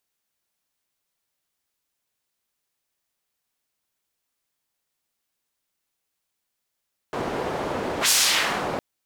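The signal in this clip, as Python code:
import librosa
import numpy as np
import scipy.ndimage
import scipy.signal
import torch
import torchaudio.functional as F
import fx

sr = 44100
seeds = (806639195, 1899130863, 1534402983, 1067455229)

y = fx.whoosh(sr, seeds[0], length_s=1.66, peak_s=0.96, rise_s=0.1, fall_s=0.67, ends_hz=550.0, peak_hz=6900.0, q=0.9, swell_db=10.5)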